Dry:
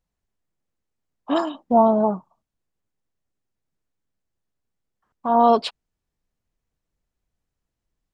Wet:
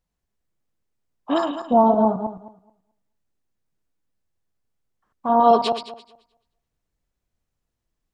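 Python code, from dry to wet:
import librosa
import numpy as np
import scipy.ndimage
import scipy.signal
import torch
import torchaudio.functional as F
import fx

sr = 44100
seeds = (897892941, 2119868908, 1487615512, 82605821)

y = fx.reverse_delay_fb(x, sr, ms=108, feedback_pct=41, wet_db=-6.5)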